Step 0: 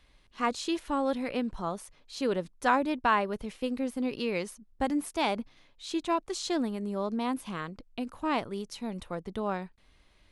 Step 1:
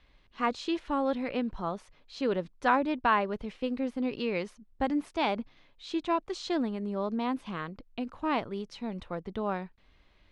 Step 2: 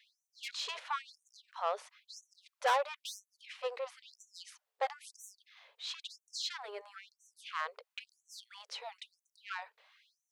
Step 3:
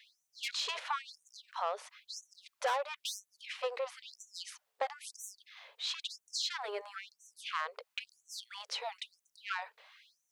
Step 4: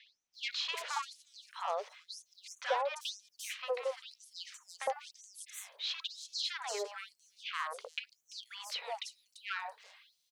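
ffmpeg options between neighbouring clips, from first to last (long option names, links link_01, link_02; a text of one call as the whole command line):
ffmpeg -i in.wav -af "lowpass=4100" out.wav
ffmpeg -i in.wav -af "asoftclip=type=tanh:threshold=-28dB,afftfilt=real='re*gte(b*sr/1024,390*pow(5900/390,0.5+0.5*sin(2*PI*1*pts/sr)))':imag='im*gte(b*sr/1024,390*pow(5900/390,0.5+0.5*sin(2*PI*1*pts/sr)))':win_size=1024:overlap=0.75,volume=4dB" out.wav
ffmpeg -i in.wav -af "acompressor=threshold=-39dB:ratio=3,volume=6dB" out.wav
ffmpeg -i in.wav -filter_complex "[0:a]acrossover=split=1200|5700[link_01][link_02][link_03];[link_01]adelay=60[link_04];[link_03]adelay=340[link_05];[link_04][link_02][link_05]amix=inputs=3:normalize=0,volume=1.5dB" out.wav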